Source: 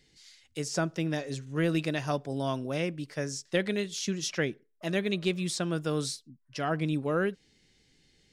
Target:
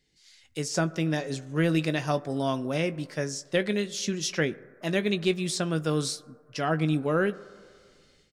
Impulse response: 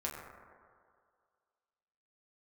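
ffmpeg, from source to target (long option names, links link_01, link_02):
-filter_complex "[0:a]asplit=2[link_01][link_02];[1:a]atrim=start_sample=2205[link_03];[link_02][link_03]afir=irnorm=-1:irlink=0,volume=-17dB[link_04];[link_01][link_04]amix=inputs=2:normalize=0,dynaudnorm=framelen=210:gausssize=3:maxgain=11dB,asplit=2[link_05][link_06];[link_06]adelay=19,volume=-13dB[link_07];[link_05][link_07]amix=inputs=2:normalize=0,volume=-8.5dB"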